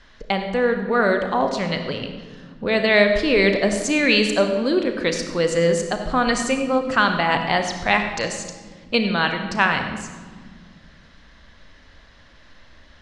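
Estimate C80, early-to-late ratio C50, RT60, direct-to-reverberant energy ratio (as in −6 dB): 8.0 dB, 6.5 dB, 1.7 s, 5.5 dB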